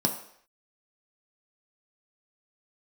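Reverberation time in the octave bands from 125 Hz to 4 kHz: 0.40, 0.50, 0.65, 0.65, 0.70, 0.65 seconds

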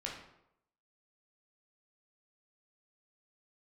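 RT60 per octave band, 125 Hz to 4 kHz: 0.75, 0.75, 0.80, 0.80, 0.65, 0.55 seconds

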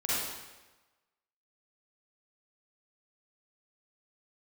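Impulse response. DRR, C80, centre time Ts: −9.5 dB, −1.0 dB, 109 ms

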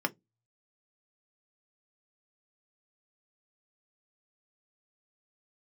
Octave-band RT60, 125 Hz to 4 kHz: 0.50, 0.25, 0.20, 0.10, 0.10, 0.10 seconds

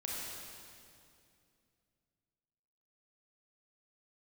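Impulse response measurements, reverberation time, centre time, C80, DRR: 2.5 s, 149 ms, −1.0 dB, −5.0 dB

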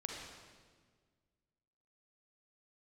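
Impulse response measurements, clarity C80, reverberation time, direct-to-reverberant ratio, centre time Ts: 2.5 dB, 1.6 s, −0.5 dB, 79 ms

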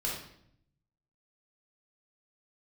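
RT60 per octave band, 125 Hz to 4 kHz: 1.3, 0.95, 0.75, 0.65, 0.60, 0.60 seconds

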